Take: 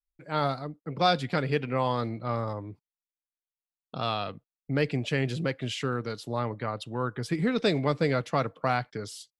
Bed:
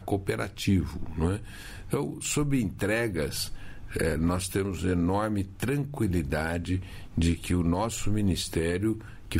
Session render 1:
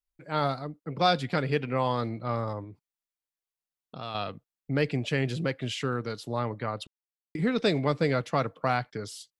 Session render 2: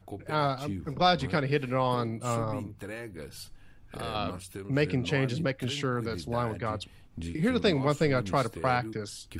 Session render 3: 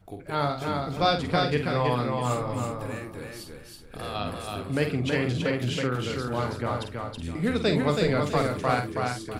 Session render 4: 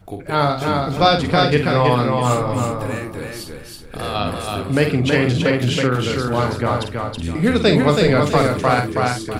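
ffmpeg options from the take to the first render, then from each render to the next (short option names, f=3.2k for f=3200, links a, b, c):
-filter_complex "[0:a]asettb=1/sr,asplit=3[a][b][c];[a]atrim=end=2.644[d];[b]atrim=start=2.64:end=4.15,asetpts=PTS-STARTPTS,afade=t=in:d=0.004:c=qsin,afade=t=out:st=1.506:d=0.004:c=qsin,acompressor=threshold=-46dB:ratio=1.5:attack=3.2:release=140:knee=1:detection=peak[e];[c]atrim=start=4.146[f];[d][e]acrossfade=d=0.004:c1=hsin:c2=qsin[g];[g][f]acrossfade=d=0.004:c1=qsin:c2=hsin,asplit=3[h][i][j];[h]atrim=end=6.87,asetpts=PTS-STARTPTS,afade=t=out:st=6.866:d=0.004:c=hsin[k];[i]atrim=start=6.87:end=7.35,asetpts=PTS-STARTPTS,volume=0[l];[j]atrim=start=7.35,asetpts=PTS-STARTPTS,afade=t=in:d=0.004:c=hsin[m];[k][l][m]concat=n=3:v=0:a=1"
-filter_complex "[1:a]volume=-12.5dB[a];[0:a][a]amix=inputs=2:normalize=0"
-filter_complex "[0:a]asplit=2[a][b];[b]adelay=48,volume=-7.5dB[c];[a][c]amix=inputs=2:normalize=0,aecho=1:1:325|650|975|1300:0.668|0.194|0.0562|0.0163"
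-af "volume=9.5dB,alimiter=limit=-2dB:level=0:latency=1"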